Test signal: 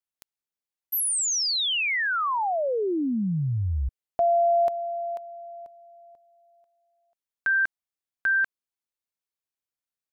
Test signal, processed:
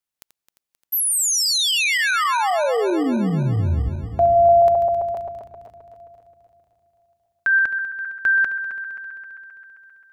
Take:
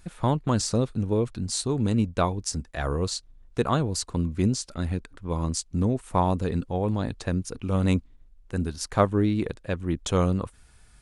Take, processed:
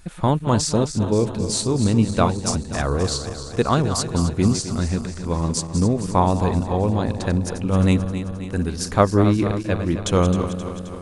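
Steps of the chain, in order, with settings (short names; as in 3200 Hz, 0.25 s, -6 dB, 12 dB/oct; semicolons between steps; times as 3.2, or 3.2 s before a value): regenerating reverse delay 0.132 s, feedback 77%, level -10 dB; gain +5 dB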